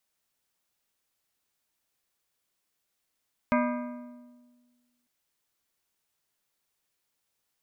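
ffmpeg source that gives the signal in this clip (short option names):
-f lavfi -i "aevalsrc='0.075*pow(10,-3*t/1.63)*sin(2*PI*244*t)+0.0562*pow(10,-3*t/1.238)*sin(2*PI*610*t)+0.0422*pow(10,-3*t/1.075)*sin(2*PI*976*t)+0.0316*pow(10,-3*t/1.006)*sin(2*PI*1220*t)+0.0237*pow(10,-3*t/0.93)*sin(2*PI*1586*t)+0.0178*pow(10,-3*t/0.858)*sin(2*PI*2074*t)+0.0133*pow(10,-3*t/0.843)*sin(2*PI*2196*t)+0.01*pow(10,-3*t/0.817)*sin(2*PI*2440*t)':d=1.55:s=44100"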